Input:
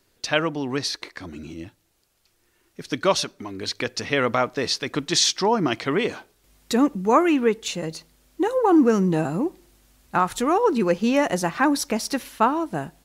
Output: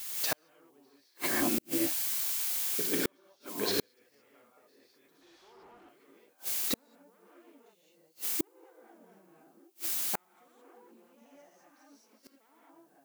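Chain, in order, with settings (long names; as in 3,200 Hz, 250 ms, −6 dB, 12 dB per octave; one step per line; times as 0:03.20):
wavefolder on the positive side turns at −18.5 dBFS
brickwall limiter −16 dBFS, peak gain reduction 11 dB
high-pass filter 410 Hz 12 dB per octave
spectral tilt −2.5 dB per octave
background noise blue −41 dBFS
0:02.87–0:03.58: noise gate −29 dBFS, range −11 dB
reverb whose tail is shaped and stops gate 240 ms rising, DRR −8 dB
gate with flip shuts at −16 dBFS, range −42 dB
0:05.21–0:05.89: mid-hump overdrive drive 20 dB, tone 1,900 Hz, clips at −48 dBFS
0:11.18–0:12.10: parametric band 6,100 Hz +8 dB 0.28 octaves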